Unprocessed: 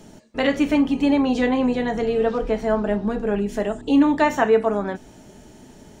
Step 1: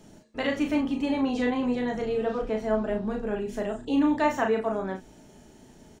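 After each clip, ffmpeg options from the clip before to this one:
-filter_complex "[0:a]asplit=2[a][b];[b]adelay=37,volume=-4.5dB[c];[a][c]amix=inputs=2:normalize=0,volume=-7.5dB"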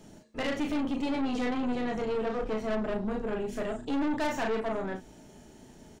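-af "aeval=exprs='(tanh(25.1*val(0)+0.45)-tanh(0.45))/25.1':c=same,volume=1.5dB"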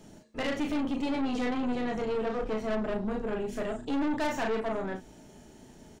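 -af anull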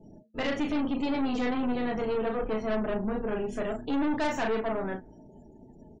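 -af "afftdn=nr=34:nf=-53,volume=1.5dB"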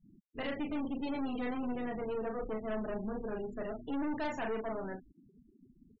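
-af "afftfilt=real='re*gte(hypot(re,im),0.0158)':imag='im*gte(hypot(re,im),0.0158)':win_size=1024:overlap=0.75,volume=-7.5dB"

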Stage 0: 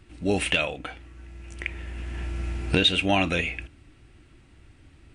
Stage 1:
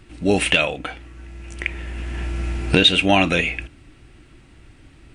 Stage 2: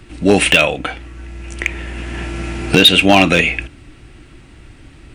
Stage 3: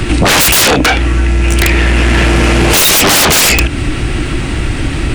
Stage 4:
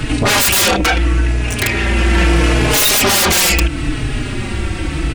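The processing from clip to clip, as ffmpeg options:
-af "equalizer=f=82:w=3.8:g=-7,volume=6.5dB"
-filter_complex "[0:a]acrossover=split=110[a][b];[a]acompressor=threshold=-35dB:ratio=6[c];[b]volume=9dB,asoftclip=hard,volume=-9dB[d];[c][d]amix=inputs=2:normalize=0,volume=7dB"
-af "aeval=exprs='0.891*sin(PI/2*10*val(0)/0.891)':c=same,acompressor=threshold=-10dB:ratio=5,volume=2.5dB"
-filter_complex "[0:a]asplit=2[a][b];[b]adelay=4.2,afreqshift=-0.76[c];[a][c]amix=inputs=2:normalize=1,volume=-1.5dB"

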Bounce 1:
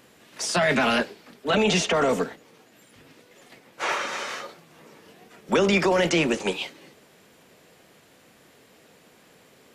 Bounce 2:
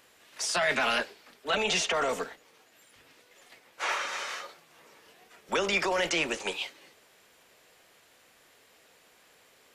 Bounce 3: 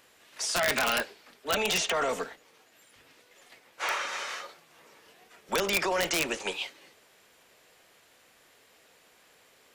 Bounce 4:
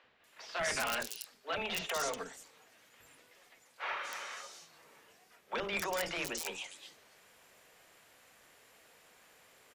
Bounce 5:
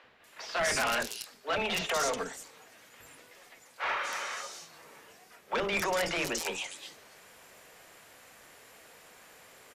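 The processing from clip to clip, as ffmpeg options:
-af "equalizer=f=180:t=o:w=2.5:g=-13.5,volume=-2.5dB"
-af "aeval=exprs='(mod(7.5*val(0)+1,2)-1)/7.5':c=same"
-filter_complex "[0:a]areverse,acompressor=mode=upward:threshold=-46dB:ratio=2.5,areverse,acrossover=split=350|4000[a][b][c];[a]adelay=40[d];[c]adelay=240[e];[d][b][e]amix=inputs=3:normalize=0,volume=-7dB"
-af "equalizer=f=3.2k:w=1.5:g=-2,asoftclip=type=tanh:threshold=-30.5dB,volume=8dB" -ar 32000 -c:a libvorbis -b:a 128k

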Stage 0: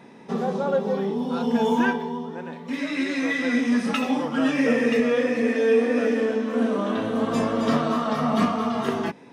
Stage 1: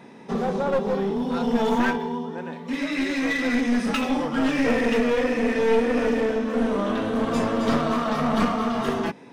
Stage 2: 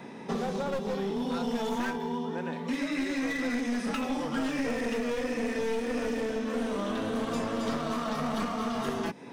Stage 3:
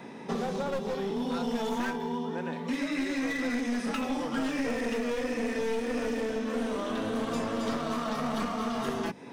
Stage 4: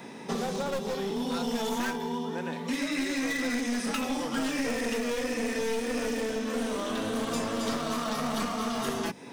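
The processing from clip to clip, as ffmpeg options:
-af "aeval=exprs='clip(val(0),-1,0.0631)':c=same,volume=1.5dB"
-filter_complex "[0:a]acrossover=split=250|2100|4700[a][b][c][d];[a]acompressor=threshold=-39dB:ratio=4[e];[b]acompressor=threshold=-35dB:ratio=4[f];[c]acompressor=threshold=-50dB:ratio=4[g];[d]acompressor=threshold=-50dB:ratio=4[h];[e][f][g][h]amix=inputs=4:normalize=0,volume=2dB"
-af "bandreject=f=50:t=h:w=6,bandreject=f=100:t=h:w=6,bandreject=f=150:t=h:w=6,bandreject=f=200:t=h:w=6"
-af "highshelf=f=4.1k:g=10.5"

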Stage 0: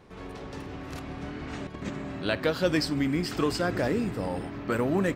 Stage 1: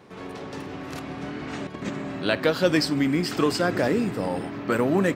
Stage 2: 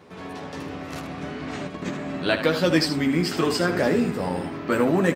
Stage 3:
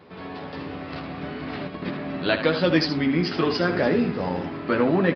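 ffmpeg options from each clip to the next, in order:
-af "highpass=130,volume=4.5dB"
-af "aecho=1:1:12|77:0.562|0.355"
-af "aresample=11025,aresample=44100"

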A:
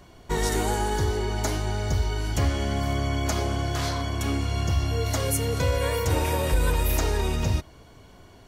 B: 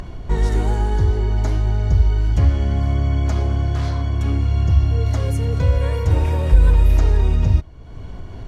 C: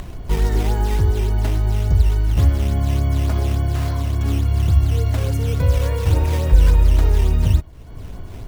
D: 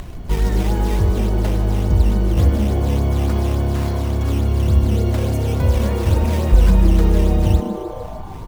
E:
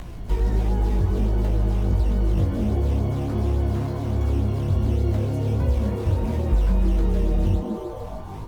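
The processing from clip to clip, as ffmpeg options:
-af "aemphasis=mode=reproduction:type=bsi,acompressor=mode=upward:threshold=-18dB:ratio=2.5,volume=-2dB"
-af "acrusher=samples=9:mix=1:aa=0.000001:lfo=1:lforange=14.4:lforate=3.5"
-filter_complex "[0:a]asplit=9[a][b][c][d][e][f][g][h][i];[b]adelay=152,afreqshift=140,volume=-12dB[j];[c]adelay=304,afreqshift=280,volume=-15.9dB[k];[d]adelay=456,afreqshift=420,volume=-19.8dB[l];[e]adelay=608,afreqshift=560,volume=-23.6dB[m];[f]adelay=760,afreqshift=700,volume=-27.5dB[n];[g]adelay=912,afreqshift=840,volume=-31.4dB[o];[h]adelay=1064,afreqshift=980,volume=-35.3dB[p];[i]adelay=1216,afreqshift=1120,volume=-39.1dB[q];[a][j][k][l][m][n][o][p][q]amix=inputs=9:normalize=0"
-filter_complex "[0:a]flanger=delay=16.5:depth=5.7:speed=1.4,acrossover=split=430|1300|6100[a][b][c][d];[a]acompressor=threshold=-17dB:ratio=4[e];[b]acompressor=threshold=-36dB:ratio=4[f];[c]acompressor=threshold=-49dB:ratio=4[g];[d]acompressor=threshold=-56dB:ratio=4[h];[e][f][g][h]amix=inputs=4:normalize=0" -ar 48000 -c:a libopus -b:a 48k

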